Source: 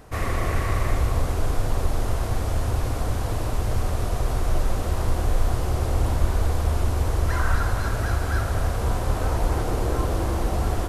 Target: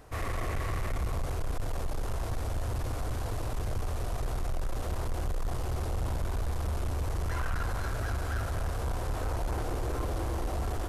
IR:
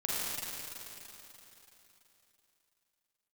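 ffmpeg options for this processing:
-af "equalizer=frequency=190:width_type=o:width=0.49:gain=-7.5,asoftclip=type=tanh:threshold=-21dB,volume=-5dB"

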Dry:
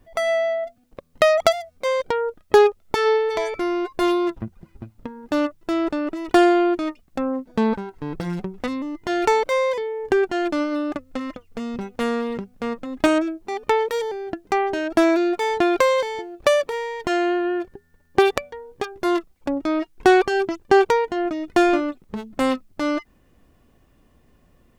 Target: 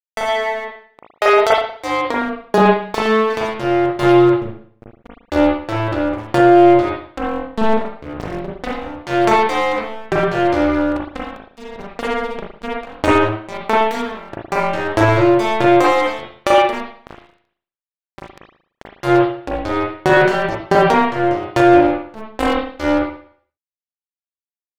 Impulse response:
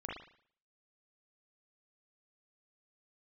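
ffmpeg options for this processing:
-filter_complex "[0:a]asettb=1/sr,asplit=3[link_01][link_02][link_03];[link_01]atrim=end=16.804[link_04];[link_02]atrim=start=16.8:end=18.86,asetpts=PTS-STARTPTS,afade=type=in:duration=0.004:curve=qsin,afade=type=out:start_time=2.056:duration=0.004:curve=qsin,acompressor=threshold=-38dB:ratio=3[link_05];[link_03]atrim=start=18.856[link_06];[link_04][link_05]acrossfade=duration=0.004:curve1=hsin:curve2=qsin[link_07];[link_07][link_06]acrossfade=duration=0.004:curve1=qsin:curve2=hsin,tremolo=f=220:d=0.857,aeval=exprs='sgn(val(0))*max(abs(val(0))-0.0316,0)':channel_layout=same[link_08];[1:a]atrim=start_sample=2205[link_09];[link_08][link_09]afir=irnorm=-1:irlink=0,alimiter=level_in=12dB:limit=-1dB:release=50:level=0:latency=1,volume=-1dB"

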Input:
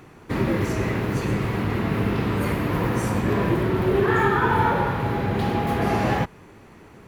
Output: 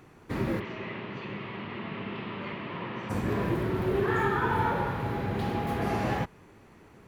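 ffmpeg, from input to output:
ffmpeg -i in.wav -filter_complex "[0:a]asplit=3[link_01][link_02][link_03];[link_01]afade=type=out:start_time=0.59:duration=0.02[link_04];[link_02]highpass=230,equalizer=frequency=290:width_type=q:width=4:gain=-9,equalizer=frequency=470:width_type=q:width=4:gain=-8,equalizer=frequency=750:width_type=q:width=4:gain=-6,equalizer=frequency=1500:width_type=q:width=4:gain=-6,equalizer=frequency=3000:width_type=q:width=4:gain=4,lowpass=frequency=3600:width=0.5412,lowpass=frequency=3600:width=1.3066,afade=type=in:start_time=0.59:duration=0.02,afade=type=out:start_time=3.09:duration=0.02[link_05];[link_03]afade=type=in:start_time=3.09:duration=0.02[link_06];[link_04][link_05][link_06]amix=inputs=3:normalize=0,volume=-7dB" out.wav

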